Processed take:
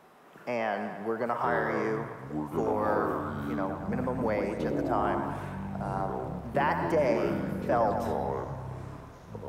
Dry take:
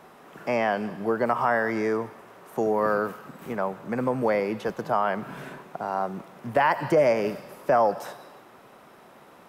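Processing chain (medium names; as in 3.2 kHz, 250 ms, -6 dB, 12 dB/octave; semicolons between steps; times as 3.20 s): ever faster or slower copies 730 ms, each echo -7 st, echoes 3; feedback echo behind a band-pass 113 ms, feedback 60%, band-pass 1.1 kHz, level -7 dB; trim -6.5 dB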